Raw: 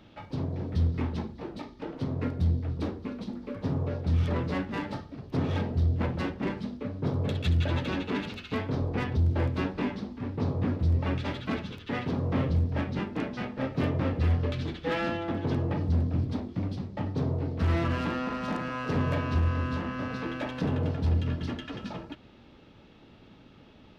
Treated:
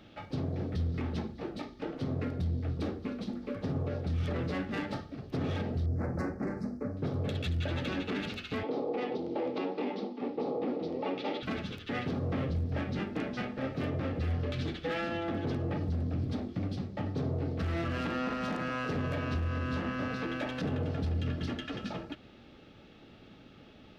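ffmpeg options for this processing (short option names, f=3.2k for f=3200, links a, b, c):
-filter_complex "[0:a]asettb=1/sr,asplit=3[a][b][c];[a]atrim=end=5.864[d];[b]atrim=start=5.86:end=6.97,asetpts=PTS-STARTPTS,afade=t=in:d=0.004:c=qsin,afade=t=out:st=1.106:d=0.004:c=qsin,asuperstop=centerf=3200:order=4:qfactor=0.81[e];[c]atrim=start=6.966[f];[d][e]acrossfade=d=0.004:c1=hsin:c2=qsin[g];[g][f]acrossfade=d=0.004:c1=qsin:c2=hsin,asettb=1/sr,asplit=3[h][i][j];[h]atrim=end=8.634[k];[i]atrim=start=8.63:end=11.43,asetpts=PTS-STARTPTS,afade=t=in:d=0.004:c=qsin,afade=t=out:st=2.796:d=0.004:c=qsin,highpass=f=220:w=0.5412,highpass=f=220:w=1.3066,equalizer=f=330:t=q:w=4:g=4,equalizer=f=480:t=q:w=4:g=9,equalizer=f=830:t=q:w=4:g=9,equalizer=f=1.6k:t=q:w=4:g=-10,lowpass=f=5.2k:w=0.5412,lowpass=f=5.2k:w=1.3066[l];[j]atrim=start=11.426[m];[k][l]acrossfade=d=0.004:c1=hsin:c2=qsin[n];[n][m]acrossfade=d=0.004:c1=qsin:c2=hsin,lowshelf=f=200:g=-3.5,bandreject=f=970:w=5.5,alimiter=level_in=2dB:limit=-24dB:level=0:latency=1:release=68,volume=-2dB,volume=1dB"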